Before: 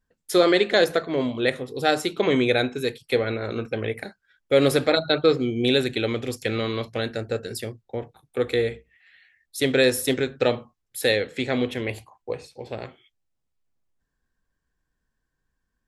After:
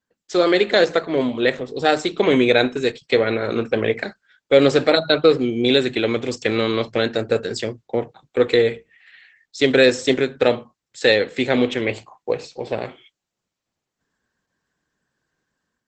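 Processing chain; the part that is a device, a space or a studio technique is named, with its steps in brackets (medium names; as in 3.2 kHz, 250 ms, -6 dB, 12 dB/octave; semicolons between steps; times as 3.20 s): video call (high-pass 150 Hz 12 dB/octave; level rider gain up to 9 dB; Opus 12 kbps 48 kHz)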